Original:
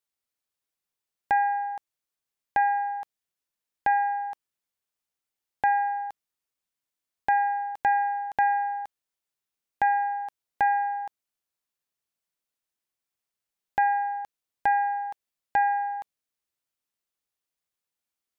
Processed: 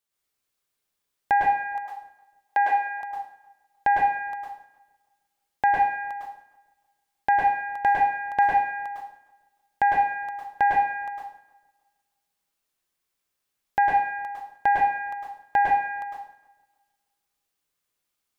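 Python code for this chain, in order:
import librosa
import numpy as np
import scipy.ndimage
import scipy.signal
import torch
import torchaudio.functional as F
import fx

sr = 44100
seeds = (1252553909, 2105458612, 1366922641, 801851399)

p1 = fx.bessel_highpass(x, sr, hz=460.0, order=4, at=(1.75, 3.01))
p2 = p1 + fx.echo_filtered(p1, sr, ms=306, feedback_pct=28, hz=2100.0, wet_db=-21.0, dry=0)
p3 = fx.rev_plate(p2, sr, seeds[0], rt60_s=0.58, hf_ratio=0.95, predelay_ms=95, drr_db=-4.0)
y = F.gain(torch.from_numpy(p3), 2.0).numpy()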